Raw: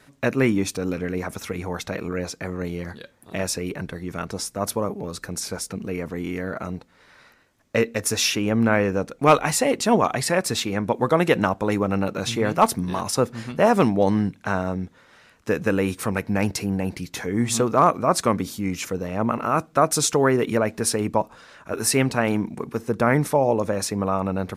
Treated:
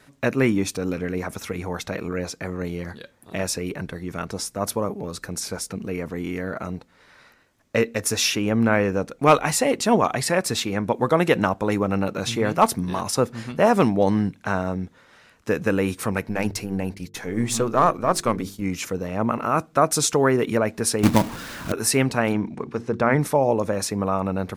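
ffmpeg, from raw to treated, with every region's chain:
-filter_complex "[0:a]asettb=1/sr,asplit=3[s0][s1][s2];[s0]atrim=end=16.294[s3];[s1]atrim=start=16.29:end=18.62,asetpts=PTS-STARTPTS,afade=t=in:d=0.004:c=qsin,afade=t=out:st=2.326:d=0.004:c=qsin,aeval=exprs='if(lt(val(0),0),0.708*val(0),val(0))':c=same,agate=range=0.0224:threshold=0.0224:ratio=3:release=100:detection=peak,bandreject=f=50:t=h:w=6,bandreject=f=100:t=h:w=6,bandreject=f=150:t=h:w=6,bandreject=f=200:t=h:w=6,bandreject=f=250:t=h:w=6,bandreject=f=300:t=h:w=6,bandreject=f=350:t=h:w=6,bandreject=f=400:t=h:w=6,bandreject=f=450:t=h:w=6[s4];[s2]atrim=start=18.616[s5];[s3][s4]acrossfade=d=0.004:c1=hsin:c2=qsin[s6];[s6][s5]acrossfade=d=0.004:c1=qsin:c2=hsin,asettb=1/sr,asplit=3[s7][s8][s9];[s7]atrim=end=21.034[s10];[s8]atrim=start=21.03:end=21.72,asetpts=PTS-STARTPTS,afade=t=in:d=0.004:c=qsin,afade=t=out:st=0.686:d=0.004:c=qsin,aeval=exprs='val(0)+0.5*0.0211*sgn(val(0))':c=same,lowshelf=f=380:t=q:w=1.5:g=7.5,acrusher=bits=2:mode=log:mix=0:aa=0.000001[s11];[s9]atrim=start=21.716[s12];[s10][s11]acrossfade=d=0.004:c1=hsin:c2=qsin[s13];[s13][s12]acrossfade=d=0.004:c1=qsin:c2=hsin,asettb=1/sr,asplit=3[s14][s15][s16];[s14]atrim=end=22.334[s17];[s15]atrim=start=22.33:end=23.19,asetpts=PTS-STARTPTS,afade=t=in:d=0.004:c=qsin,afade=t=out:st=0.856:d=0.004:c=qsin,lowpass=5500,bandreject=f=60:t=h:w=6,bandreject=f=120:t=h:w=6,bandreject=f=180:t=h:w=6,bandreject=f=240:t=h:w=6,bandreject=f=300:t=h:w=6,bandreject=f=360:t=h:w=6[s18];[s16]atrim=start=23.186[s19];[s17][s18]acrossfade=d=0.004:c1=hsin:c2=qsin[s20];[s20][s19]acrossfade=d=0.004:c1=qsin:c2=hsin"

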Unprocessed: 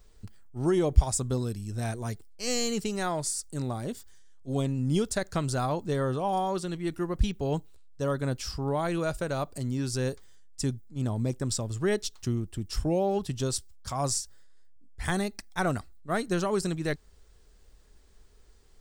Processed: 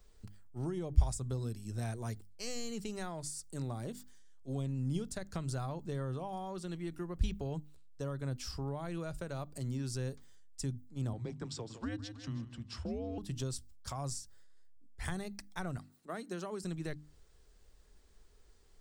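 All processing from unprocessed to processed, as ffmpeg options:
-filter_complex "[0:a]asettb=1/sr,asplit=3[s0][s1][s2];[s0]atrim=end=11.134[s3];[s1]atrim=start=11.13:end=13.18,asetpts=PTS-STARTPTS,afade=t=in:d=0.004:c=qsin,afade=t=out:st=2.046:d=0.004:c=qsin,afreqshift=-110,highpass=120,lowpass=4400,aecho=1:1:158|316|474|632:0.2|0.0818|0.0335|0.0138,atrim=end_sample=90405[s4];[s2]atrim=start=13.176[s5];[s3][s4]acrossfade=d=0.004:c1=hsin:c2=qsin[s6];[s6][s5]acrossfade=d=0.004:c1=qsin:c2=hsin,asettb=1/sr,asplit=3[s7][s8][s9];[s7]atrim=end=15.774[s10];[s8]atrim=start=15.77:end=16.63,asetpts=PTS-STARTPTS,afade=t=in:d=0.004:c=qsin,afade=t=out:st=0.856:d=0.004:c=qsin,highpass=f=200:w=0.5412,highpass=f=200:w=1.3066,acompressor=mode=upward:threshold=0.00398:ratio=2.5:attack=3.2:release=140:knee=2.83:detection=peak[s11];[s9]atrim=start=16.626[s12];[s10][s11]acrossfade=d=0.004:c1=hsin:c2=qsin[s13];[s13][s12]acrossfade=d=0.004:c1=qsin:c2=hsin,bandreject=f=50:t=h:w=6,bandreject=f=100:t=h:w=6,bandreject=f=150:t=h:w=6,bandreject=f=200:t=h:w=6,bandreject=f=250:t=h:w=6,bandreject=f=300:t=h:w=6,acrossover=split=170[s14][s15];[s15]acompressor=threshold=0.0178:ratio=6[s16];[s14][s16]amix=inputs=2:normalize=0,volume=0.596"

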